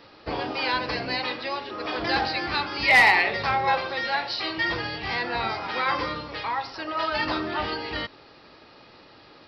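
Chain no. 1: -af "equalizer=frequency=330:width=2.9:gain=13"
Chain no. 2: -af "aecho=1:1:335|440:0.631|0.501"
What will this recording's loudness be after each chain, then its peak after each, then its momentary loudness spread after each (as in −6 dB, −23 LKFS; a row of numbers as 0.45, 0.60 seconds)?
−23.5, −22.5 LKFS; −7.0, −7.5 dBFS; 11, 12 LU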